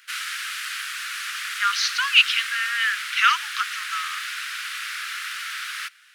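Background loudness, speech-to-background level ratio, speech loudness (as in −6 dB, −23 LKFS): −29.0 LKFS, 8.0 dB, −21.0 LKFS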